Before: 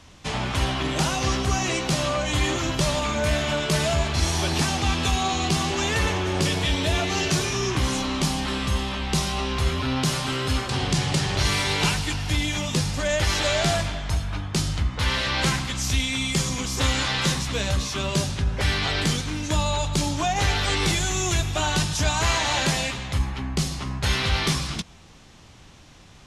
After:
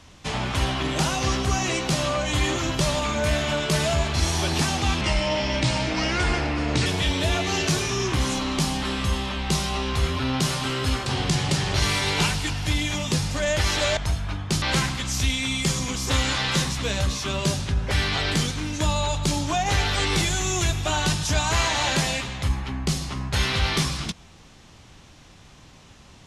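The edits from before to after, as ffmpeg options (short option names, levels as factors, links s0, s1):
-filter_complex "[0:a]asplit=5[s0][s1][s2][s3][s4];[s0]atrim=end=5.014[s5];[s1]atrim=start=5.01:end=6.49,asetpts=PTS-STARTPTS,asetrate=35280,aresample=44100[s6];[s2]atrim=start=6.486:end=13.602[s7];[s3]atrim=start=14.008:end=14.662[s8];[s4]atrim=start=15.318[s9];[s5][s6]acrossfade=d=0.004:c1=hsin:c2=hsin[s10];[s10][s7]acrossfade=d=0.004:c1=hsin:c2=hsin[s11];[s11][s8]acrossfade=d=0.004:c1=hsin:c2=hsin[s12];[s12][s9]acrossfade=d=0.004:c1=hsin:c2=hsin"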